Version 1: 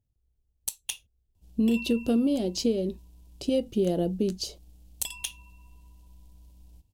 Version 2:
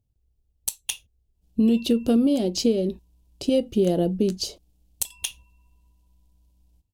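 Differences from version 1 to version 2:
speech +4.5 dB; background -8.5 dB

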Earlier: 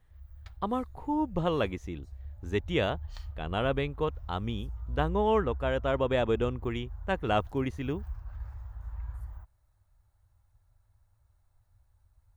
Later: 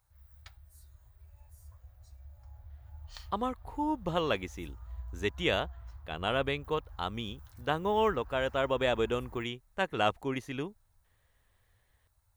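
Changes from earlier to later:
speech: entry +2.70 s; master: add tilt +2 dB/oct

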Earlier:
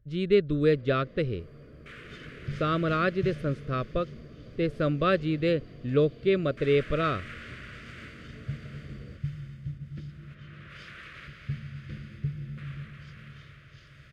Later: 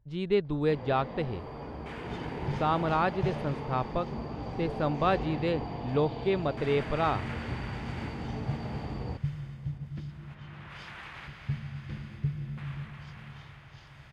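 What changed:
speech -4.5 dB; first sound +9.5 dB; master: remove Chebyshev band-stop 570–1300 Hz, order 2

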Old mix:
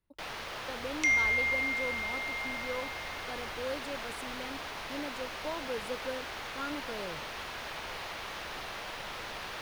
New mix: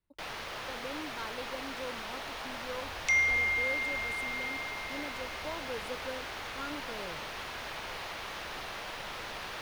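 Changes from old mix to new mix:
speech -3.0 dB; second sound: entry +2.05 s

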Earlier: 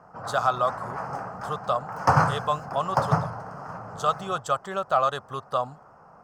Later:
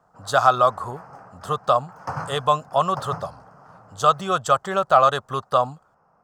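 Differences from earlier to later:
speech +7.0 dB; background -10.5 dB

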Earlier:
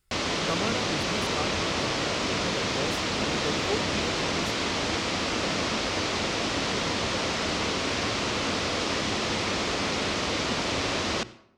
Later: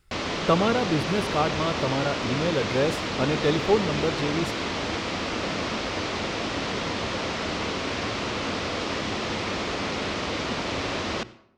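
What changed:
speech +10.5 dB; master: add high shelf 6300 Hz -11.5 dB

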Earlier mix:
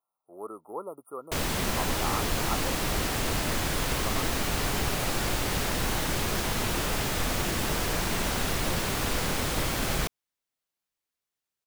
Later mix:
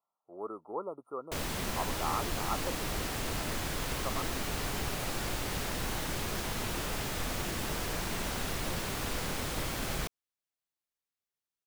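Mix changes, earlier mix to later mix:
speech: add air absorption 140 m; background -6.5 dB

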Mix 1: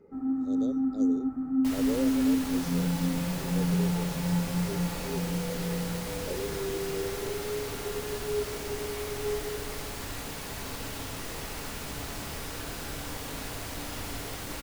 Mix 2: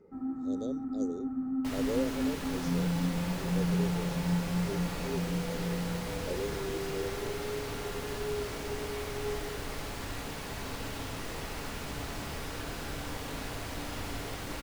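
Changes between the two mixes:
first sound: send off; second sound: add high shelf 5900 Hz -8 dB

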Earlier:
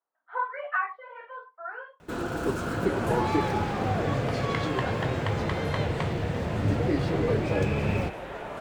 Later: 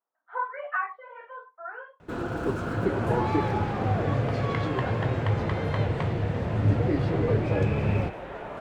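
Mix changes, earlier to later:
first sound: add bell 110 Hz +6.5 dB 0.31 oct; master: add high shelf 4300 Hz -11.5 dB

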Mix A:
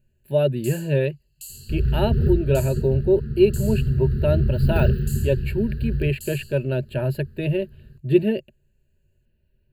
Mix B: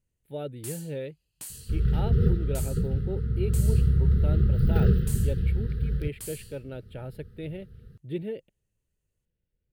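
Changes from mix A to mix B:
speech -12.0 dB; first sound: remove brick-wall FIR high-pass 2600 Hz; master: remove ripple EQ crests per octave 1.4, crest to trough 13 dB

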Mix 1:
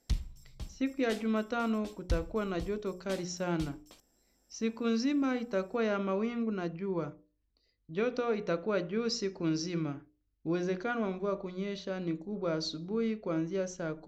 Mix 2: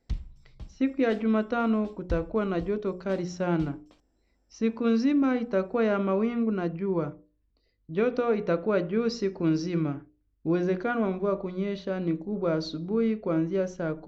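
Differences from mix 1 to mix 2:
speech +7.0 dB; master: add tape spacing loss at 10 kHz 20 dB

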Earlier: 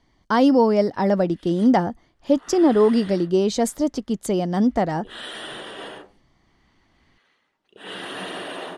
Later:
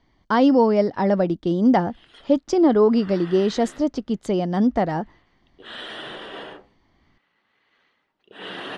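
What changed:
background: entry +0.55 s; master: add LPF 4700 Hz 12 dB/oct

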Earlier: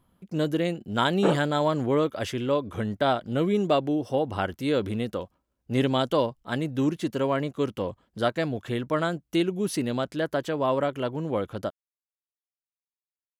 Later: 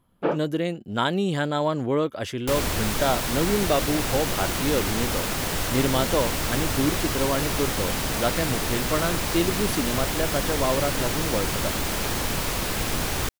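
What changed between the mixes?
first sound: entry -1.00 s; second sound: unmuted

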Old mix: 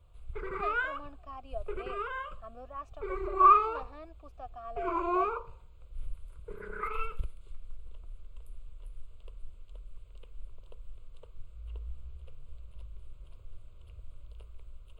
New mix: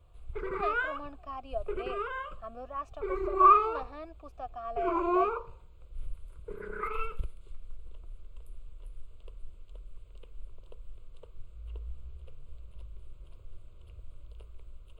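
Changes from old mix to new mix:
speech +4.5 dB; background: add bell 310 Hz +4.5 dB 1.3 oct

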